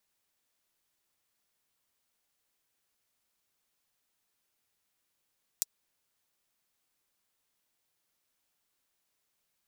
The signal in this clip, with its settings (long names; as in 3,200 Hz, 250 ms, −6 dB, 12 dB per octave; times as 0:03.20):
closed synth hi-hat, high-pass 5,700 Hz, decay 0.03 s